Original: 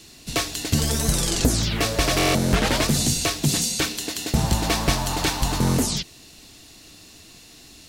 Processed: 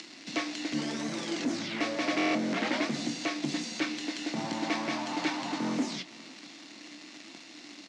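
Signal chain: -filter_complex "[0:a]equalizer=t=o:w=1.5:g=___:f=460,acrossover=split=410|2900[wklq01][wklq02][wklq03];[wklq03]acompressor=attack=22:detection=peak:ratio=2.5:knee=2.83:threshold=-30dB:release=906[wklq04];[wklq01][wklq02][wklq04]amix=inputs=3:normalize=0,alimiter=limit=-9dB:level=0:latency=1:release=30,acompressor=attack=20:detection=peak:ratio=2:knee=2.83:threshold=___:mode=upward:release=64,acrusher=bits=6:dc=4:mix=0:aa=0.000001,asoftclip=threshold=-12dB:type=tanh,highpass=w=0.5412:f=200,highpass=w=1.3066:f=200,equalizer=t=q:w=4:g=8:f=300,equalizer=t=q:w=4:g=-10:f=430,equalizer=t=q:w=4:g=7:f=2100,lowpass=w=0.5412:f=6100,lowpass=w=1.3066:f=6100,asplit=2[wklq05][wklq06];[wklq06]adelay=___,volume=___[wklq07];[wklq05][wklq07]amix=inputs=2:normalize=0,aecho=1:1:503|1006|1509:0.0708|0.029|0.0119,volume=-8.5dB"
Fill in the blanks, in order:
4, -27dB, 27, -12.5dB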